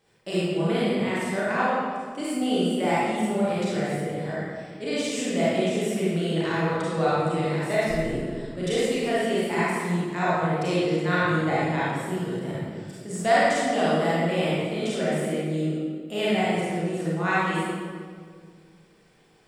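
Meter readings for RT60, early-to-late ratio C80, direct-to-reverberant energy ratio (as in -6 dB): 1.9 s, -2.0 dB, -9.5 dB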